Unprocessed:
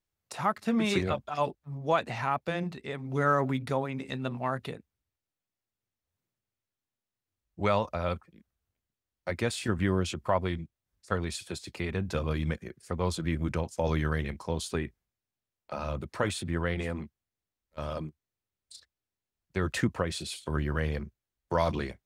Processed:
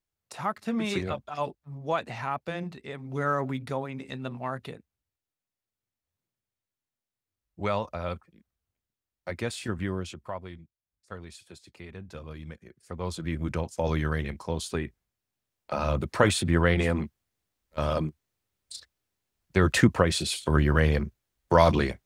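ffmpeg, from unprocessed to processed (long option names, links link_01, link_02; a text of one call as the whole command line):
ffmpeg -i in.wav -af "volume=17dB,afade=type=out:start_time=9.63:duration=0.79:silence=0.354813,afade=type=in:start_time=12.56:duration=1.07:silence=0.251189,afade=type=in:start_time=14.84:duration=1.34:silence=0.446684" out.wav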